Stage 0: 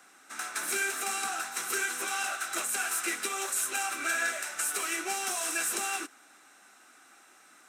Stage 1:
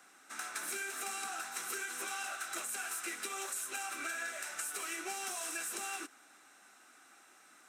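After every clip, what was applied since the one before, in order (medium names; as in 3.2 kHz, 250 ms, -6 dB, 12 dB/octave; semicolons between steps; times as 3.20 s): compression, threshold -33 dBFS, peak gain reduction 7.5 dB; trim -3.5 dB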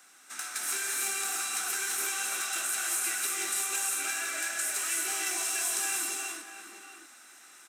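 treble shelf 2.1 kHz +10.5 dB; echo from a far wall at 110 m, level -8 dB; gated-style reverb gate 380 ms rising, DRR -2 dB; trim -3 dB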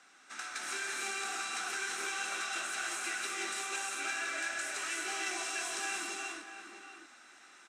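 distance through air 100 m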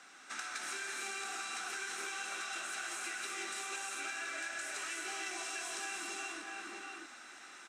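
compression 4:1, threshold -44 dBFS, peak gain reduction 10 dB; trim +4.5 dB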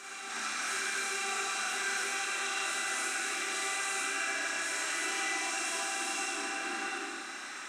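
peak limiter -35.5 dBFS, peak gain reduction 9 dB; reverse echo 1032 ms -8.5 dB; Schroeder reverb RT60 1.3 s, combs from 28 ms, DRR -4.5 dB; trim +4.5 dB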